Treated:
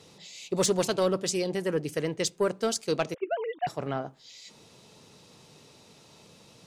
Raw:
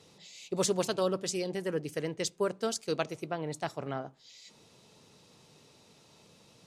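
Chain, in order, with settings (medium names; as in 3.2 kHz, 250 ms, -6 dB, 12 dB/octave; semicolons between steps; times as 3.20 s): 3.14–3.67 s: formants replaced by sine waves; saturation -19.5 dBFS, distortion -22 dB; trim +5 dB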